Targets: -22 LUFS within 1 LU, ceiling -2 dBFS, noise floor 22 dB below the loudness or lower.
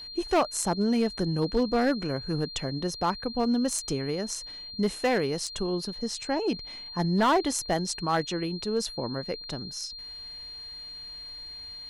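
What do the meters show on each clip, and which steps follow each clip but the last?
clipped 0.8%; flat tops at -18.0 dBFS; steady tone 4200 Hz; tone level -39 dBFS; loudness -29.0 LUFS; peak -18.0 dBFS; loudness target -22.0 LUFS
-> clip repair -18 dBFS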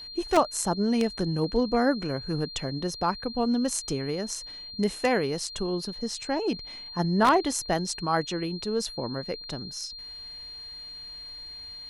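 clipped 0.0%; steady tone 4200 Hz; tone level -39 dBFS
-> notch 4200 Hz, Q 30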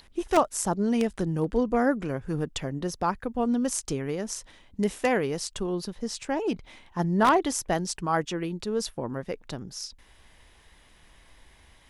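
steady tone none; loudness -28.0 LUFS; peak -9.0 dBFS; loudness target -22.0 LUFS
-> gain +6 dB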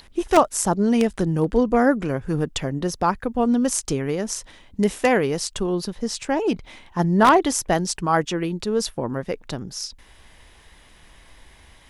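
loudness -22.0 LUFS; peak -3.0 dBFS; noise floor -51 dBFS

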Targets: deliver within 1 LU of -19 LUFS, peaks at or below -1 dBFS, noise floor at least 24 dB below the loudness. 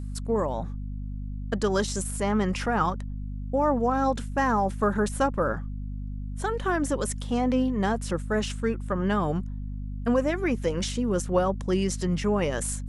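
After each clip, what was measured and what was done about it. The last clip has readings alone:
hum 50 Hz; harmonics up to 250 Hz; hum level -31 dBFS; loudness -27.5 LUFS; peak -10.5 dBFS; loudness target -19.0 LUFS
-> de-hum 50 Hz, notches 5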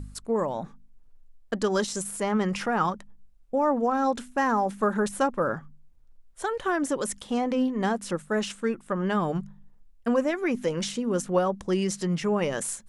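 hum none; loudness -27.5 LUFS; peak -11.5 dBFS; loudness target -19.0 LUFS
-> gain +8.5 dB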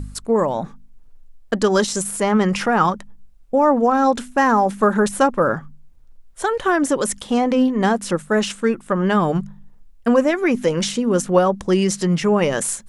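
loudness -19.0 LUFS; peak -3.0 dBFS; noise floor -46 dBFS

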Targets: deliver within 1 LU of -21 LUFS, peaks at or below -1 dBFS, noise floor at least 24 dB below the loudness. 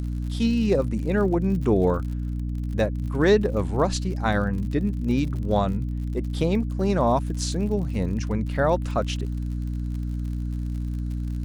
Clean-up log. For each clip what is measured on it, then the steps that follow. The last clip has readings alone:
ticks 56/s; hum 60 Hz; harmonics up to 300 Hz; hum level -25 dBFS; loudness -25.0 LUFS; peak -8.0 dBFS; loudness target -21.0 LUFS
-> de-click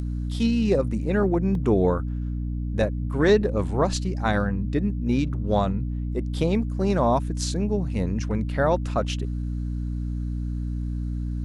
ticks 0.35/s; hum 60 Hz; harmonics up to 300 Hz; hum level -25 dBFS
-> notches 60/120/180/240/300 Hz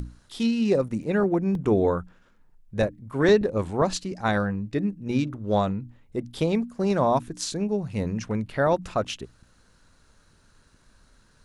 hum none; loudness -25.5 LUFS; peak -9.0 dBFS; loudness target -21.0 LUFS
-> gain +4.5 dB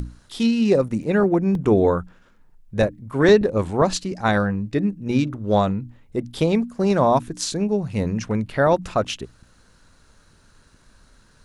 loudness -21.0 LUFS; peak -4.5 dBFS; noise floor -56 dBFS

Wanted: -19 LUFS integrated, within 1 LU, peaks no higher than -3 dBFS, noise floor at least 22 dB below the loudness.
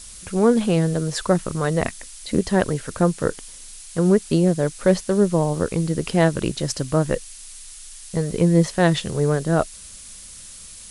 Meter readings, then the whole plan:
noise floor -41 dBFS; noise floor target -43 dBFS; loudness -21.0 LUFS; peak -2.5 dBFS; loudness target -19.0 LUFS
-> noise print and reduce 6 dB; gain +2 dB; limiter -3 dBFS

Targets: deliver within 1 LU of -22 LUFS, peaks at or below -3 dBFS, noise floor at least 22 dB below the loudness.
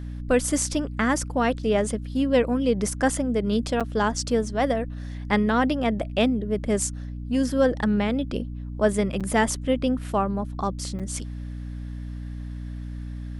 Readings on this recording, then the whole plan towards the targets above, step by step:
dropouts 3; longest dropout 6.6 ms; hum 60 Hz; harmonics up to 300 Hz; hum level -31 dBFS; loudness -24.5 LUFS; peak -7.0 dBFS; loudness target -22.0 LUFS
-> interpolate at 3.8/9.2/10.99, 6.6 ms; de-hum 60 Hz, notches 5; gain +2.5 dB

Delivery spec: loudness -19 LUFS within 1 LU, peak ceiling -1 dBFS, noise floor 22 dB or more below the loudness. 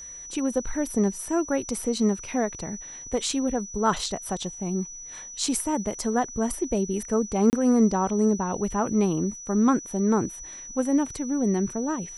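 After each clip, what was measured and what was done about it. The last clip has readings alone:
dropouts 1; longest dropout 29 ms; steady tone 5900 Hz; tone level -38 dBFS; loudness -26.0 LUFS; peak -8.5 dBFS; loudness target -19.0 LUFS
-> interpolate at 7.5, 29 ms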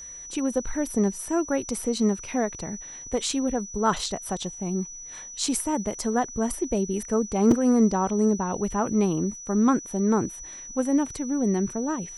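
dropouts 0; steady tone 5900 Hz; tone level -38 dBFS
-> notch 5900 Hz, Q 30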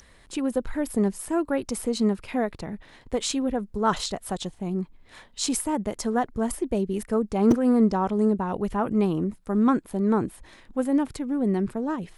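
steady tone none; loudness -26.0 LUFS; peak -6.5 dBFS; loudness target -19.0 LUFS
-> gain +7 dB; limiter -1 dBFS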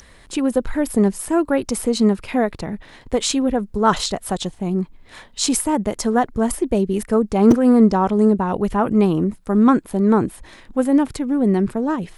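loudness -19.0 LUFS; peak -1.0 dBFS; noise floor -47 dBFS

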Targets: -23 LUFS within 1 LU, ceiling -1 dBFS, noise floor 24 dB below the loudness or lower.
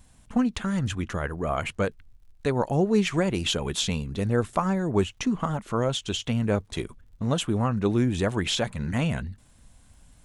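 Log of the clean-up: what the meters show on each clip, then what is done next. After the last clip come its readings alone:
ticks 38/s; loudness -27.0 LUFS; peak -9.5 dBFS; loudness target -23.0 LUFS
-> de-click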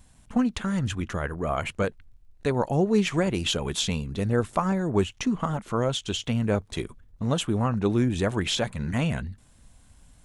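ticks 0.098/s; loudness -27.0 LUFS; peak -9.5 dBFS; loudness target -23.0 LUFS
-> gain +4 dB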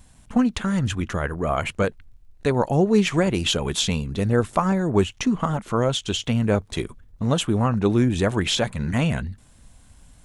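loudness -23.0 LUFS; peak -5.5 dBFS; noise floor -52 dBFS

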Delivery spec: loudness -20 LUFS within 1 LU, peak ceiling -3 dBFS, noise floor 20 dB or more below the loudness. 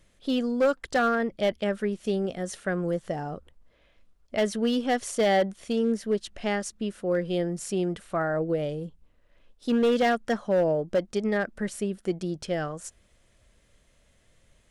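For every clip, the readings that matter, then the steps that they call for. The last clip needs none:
clipped 0.9%; flat tops at -17.5 dBFS; loudness -27.5 LUFS; peak -17.5 dBFS; loudness target -20.0 LUFS
-> clip repair -17.5 dBFS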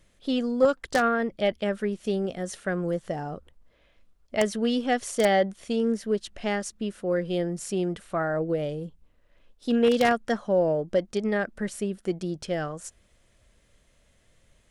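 clipped 0.0%; loudness -27.0 LUFS; peak -8.5 dBFS; loudness target -20.0 LUFS
-> gain +7 dB; limiter -3 dBFS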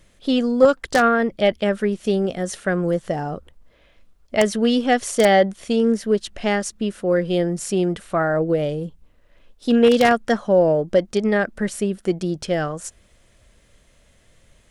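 loudness -20.0 LUFS; peak -3.0 dBFS; noise floor -57 dBFS

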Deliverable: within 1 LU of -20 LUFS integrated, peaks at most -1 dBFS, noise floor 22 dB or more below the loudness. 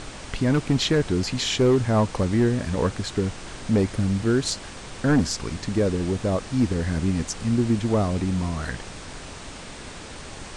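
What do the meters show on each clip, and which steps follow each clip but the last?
clipped 0.8%; flat tops at -13.5 dBFS; noise floor -39 dBFS; noise floor target -46 dBFS; loudness -24.0 LUFS; peak -13.5 dBFS; loudness target -20.0 LUFS
-> clip repair -13.5 dBFS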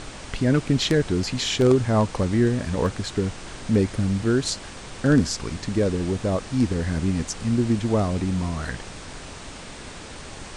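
clipped 0.0%; noise floor -39 dBFS; noise floor target -46 dBFS
-> noise print and reduce 7 dB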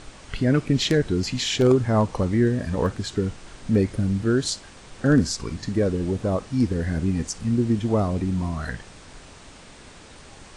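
noise floor -46 dBFS; loudness -23.5 LUFS; peak -5.0 dBFS; loudness target -20.0 LUFS
-> gain +3.5 dB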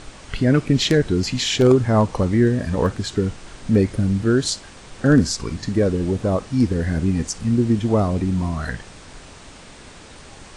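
loudness -20.0 LUFS; peak -1.5 dBFS; noise floor -42 dBFS

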